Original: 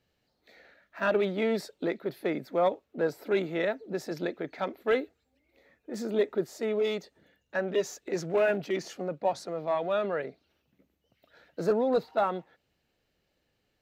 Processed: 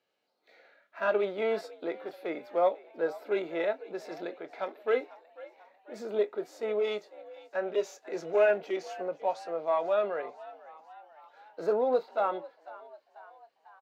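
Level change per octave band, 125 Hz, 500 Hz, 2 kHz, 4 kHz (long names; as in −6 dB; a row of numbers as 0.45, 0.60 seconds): below −10 dB, −0.5 dB, −2.5 dB, −4.5 dB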